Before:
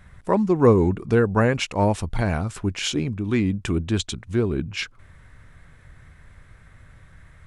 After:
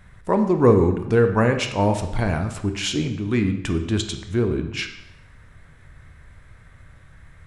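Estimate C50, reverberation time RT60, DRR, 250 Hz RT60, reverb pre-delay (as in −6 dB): 9.0 dB, 0.85 s, 6.0 dB, 0.85 s, 16 ms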